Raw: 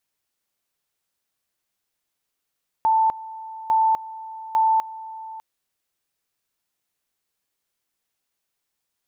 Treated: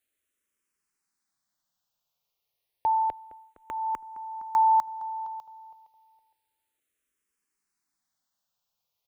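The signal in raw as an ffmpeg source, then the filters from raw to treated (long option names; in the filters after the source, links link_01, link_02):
-f lavfi -i "aevalsrc='pow(10,(-15-18*gte(mod(t,0.85),0.25))/20)*sin(2*PI*886*t)':duration=2.55:sample_rate=44100"
-filter_complex "[0:a]asplit=2[link_01][link_02];[link_02]adelay=463,lowpass=frequency=1500:poles=1,volume=-15dB,asplit=2[link_03][link_04];[link_04]adelay=463,lowpass=frequency=1500:poles=1,volume=0.29,asplit=2[link_05][link_06];[link_06]adelay=463,lowpass=frequency=1500:poles=1,volume=0.29[link_07];[link_01][link_03][link_05][link_07]amix=inputs=4:normalize=0,asplit=2[link_08][link_09];[link_09]afreqshift=-0.3[link_10];[link_08][link_10]amix=inputs=2:normalize=1"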